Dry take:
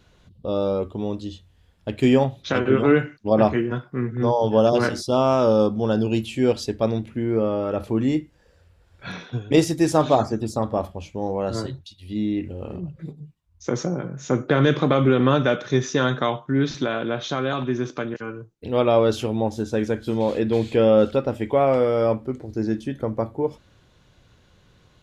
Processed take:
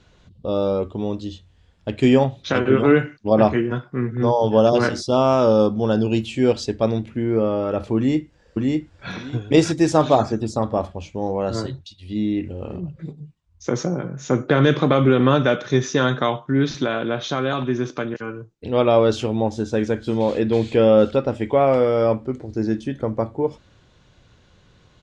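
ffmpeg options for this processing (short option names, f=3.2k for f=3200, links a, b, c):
-filter_complex "[0:a]asplit=2[a][b];[b]afade=t=in:st=7.96:d=0.01,afade=t=out:st=9.12:d=0.01,aecho=0:1:600|1200|1800:0.841395|0.168279|0.0336558[c];[a][c]amix=inputs=2:normalize=0,lowpass=f=8.3k:w=0.5412,lowpass=f=8.3k:w=1.3066,volume=2dB"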